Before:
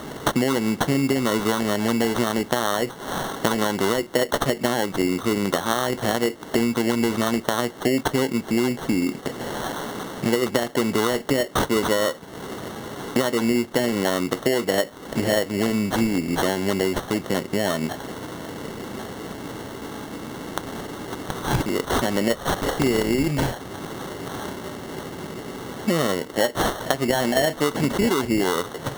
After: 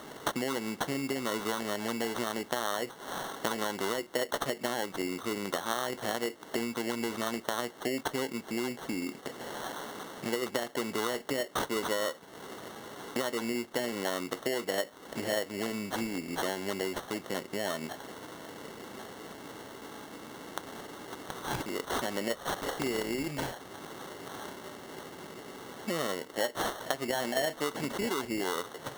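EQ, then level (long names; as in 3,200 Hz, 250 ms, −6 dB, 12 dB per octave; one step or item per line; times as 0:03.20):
low-shelf EQ 230 Hz −11 dB
−8.5 dB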